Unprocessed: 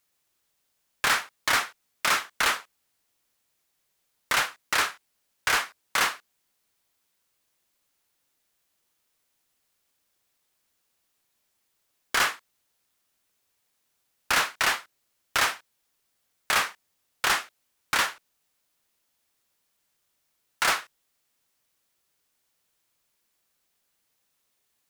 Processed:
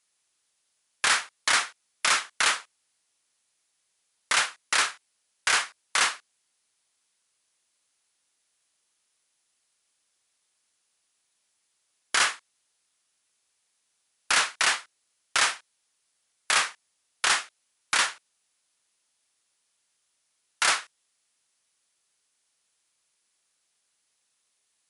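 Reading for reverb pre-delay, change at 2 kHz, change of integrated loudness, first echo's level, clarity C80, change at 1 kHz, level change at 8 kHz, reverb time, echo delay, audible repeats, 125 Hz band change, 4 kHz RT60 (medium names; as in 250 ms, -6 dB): no reverb, +0.5 dB, +1.0 dB, no echo, no reverb, -1.0 dB, +4.0 dB, no reverb, no echo, no echo, no reading, no reverb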